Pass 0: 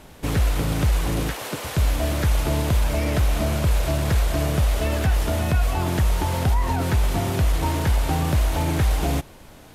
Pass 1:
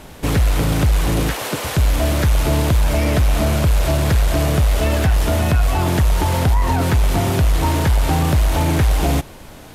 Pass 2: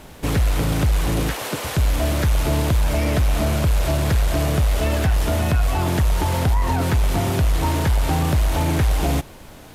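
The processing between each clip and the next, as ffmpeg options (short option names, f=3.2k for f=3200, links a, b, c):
-af "asoftclip=type=tanh:threshold=-15.5dB,volume=7dB"
-af "acrusher=bits=9:mix=0:aa=0.000001,volume=-3dB"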